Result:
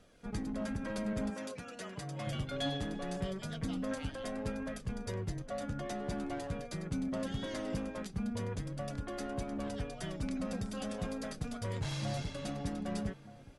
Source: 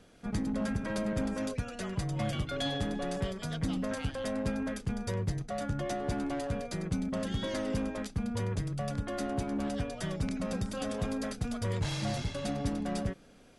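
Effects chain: outdoor echo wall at 210 m, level -15 dB; flange 0.21 Hz, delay 1.5 ms, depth 6.3 ms, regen +60%; 1.3–2.27 HPF 330 Hz 6 dB/oct

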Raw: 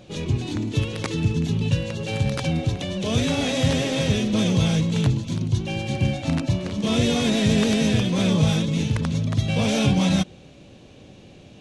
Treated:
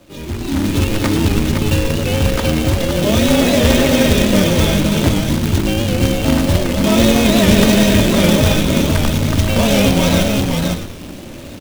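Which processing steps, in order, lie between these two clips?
high shelf 2400 Hz -7.5 dB; comb 3.2 ms, depth 52%; de-hum 66.26 Hz, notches 22; on a send: echo 0.513 s -5.5 dB; on the sum: frequency shift -13 Hz; frequency-shifting echo 0.113 s, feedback 52%, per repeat -87 Hz, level -10.5 dB; dynamic EQ 130 Hz, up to -5 dB, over -27 dBFS, Q 0.93; companded quantiser 4-bit; AGC gain up to 13 dB; record warp 78 rpm, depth 100 cents

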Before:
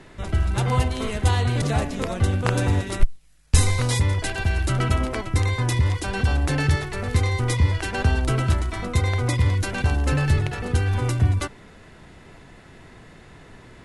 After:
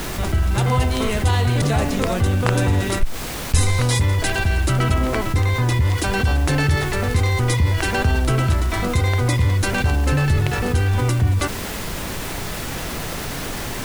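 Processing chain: 4.94–5.85 high shelf 5500 Hz -9 dB; added noise pink -42 dBFS; fast leveller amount 50%; gain -3 dB

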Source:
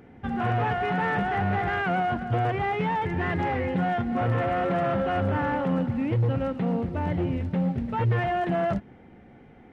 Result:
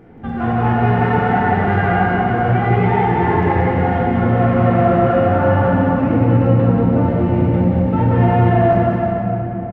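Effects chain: high shelf 2200 Hz -10 dB; in parallel at +1 dB: limiter -23 dBFS, peak gain reduction 7.5 dB; on the sum: bouncing-ball echo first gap 0.18 s, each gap 0.85×, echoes 5; shoebox room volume 200 m³, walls hard, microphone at 0.71 m; gain -1 dB

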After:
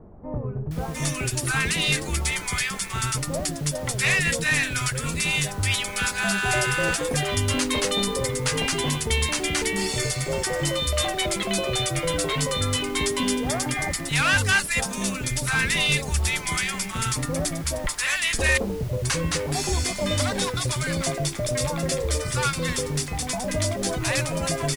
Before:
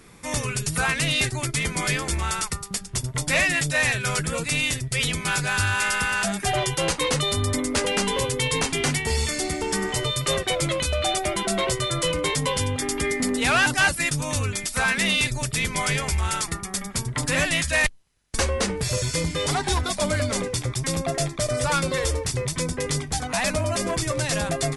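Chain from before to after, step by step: added noise pink -44 dBFS; bands offset in time lows, highs 0.71 s, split 850 Hz

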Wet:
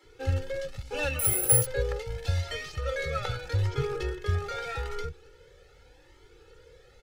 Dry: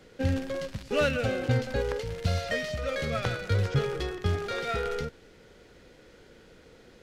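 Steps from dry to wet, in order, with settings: 1.19–1.66 careless resampling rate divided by 4×, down none, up zero stuff; comb 2.3 ms, depth 84%; bands offset in time highs, lows 30 ms, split 270 Hz; cascading flanger rising 0.81 Hz

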